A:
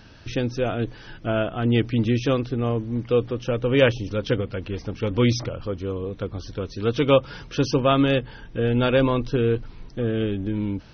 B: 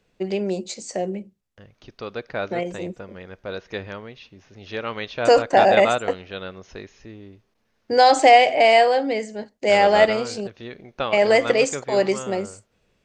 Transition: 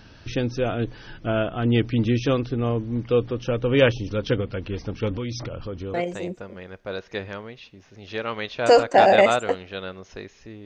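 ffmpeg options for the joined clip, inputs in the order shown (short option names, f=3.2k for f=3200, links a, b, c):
-filter_complex "[0:a]asettb=1/sr,asplit=3[a][b][c];[a]atrim=end=5.154[d];[b]atrim=start=5.15:end=5.94,asetpts=PTS-STARTPTS,afade=t=in:d=0.004:c=qsin,afade=t=out:st=0.786:d=0.004:c=qsin,acompressor=threshold=-28dB:ratio=4:attack=3.2:release=140:knee=1:detection=peak[e];[c]atrim=start=5.936[f];[d][e]acrossfade=d=0.004:c1=hsin:c2=qsin[g];[g][f]acrossfade=d=0.004:c1=qsin:c2=hsin,apad=whole_dur=10.65,atrim=end=10.65,atrim=end=5.942[h];[1:a]atrim=start=2.528:end=7.24[i];[h][i]acrossfade=d=0.004:c1=hsin:c2=hsin"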